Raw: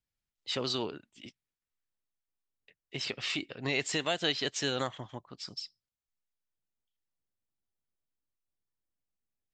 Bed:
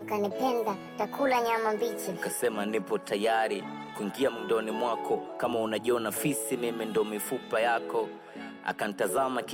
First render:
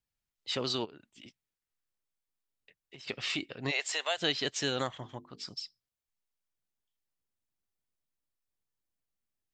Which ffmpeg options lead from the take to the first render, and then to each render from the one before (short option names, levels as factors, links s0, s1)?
-filter_complex "[0:a]asplit=3[s0][s1][s2];[s0]afade=t=out:st=0.84:d=0.02[s3];[s1]acompressor=threshold=0.00501:ratio=12:attack=3.2:release=140:knee=1:detection=peak,afade=t=in:st=0.84:d=0.02,afade=t=out:st=3.07:d=0.02[s4];[s2]afade=t=in:st=3.07:d=0.02[s5];[s3][s4][s5]amix=inputs=3:normalize=0,asplit=3[s6][s7][s8];[s6]afade=t=out:st=3.7:d=0.02[s9];[s7]highpass=f=550:w=0.5412,highpass=f=550:w=1.3066,afade=t=in:st=3.7:d=0.02,afade=t=out:st=4.17:d=0.02[s10];[s8]afade=t=in:st=4.17:d=0.02[s11];[s9][s10][s11]amix=inputs=3:normalize=0,asettb=1/sr,asplit=3[s12][s13][s14];[s12]atrim=end=4.904[s15];[s13]atrim=start=4.9:end=5.49,asetpts=PTS-STARTPTS,afade=t=in:d=0.004:c=qsin,afade=t=out:st=0.586:d=0.004:c=qsin,bandreject=f=50:t=h:w=6,bandreject=f=100:t=h:w=6,bandreject=f=150:t=h:w=6,bandreject=f=200:t=h:w=6,bandreject=f=250:t=h:w=6,bandreject=f=300:t=h:w=6,bandreject=f=350:t=h:w=6,bandreject=f=400:t=h:w=6,bandreject=f=450:t=h:w=6[s16];[s14]atrim=start=5.486[s17];[s15][s16]acrossfade=d=0.004:c1=hsin:c2=qsin[s18];[s18][s17]acrossfade=d=0.004:c1=qsin:c2=hsin"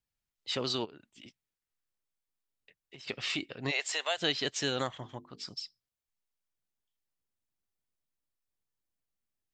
-af anull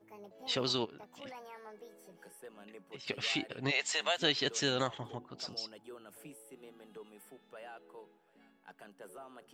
-filter_complex "[1:a]volume=0.0708[s0];[0:a][s0]amix=inputs=2:normalize=0"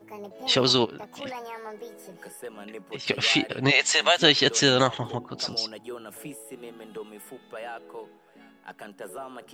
-af "volume=3.98"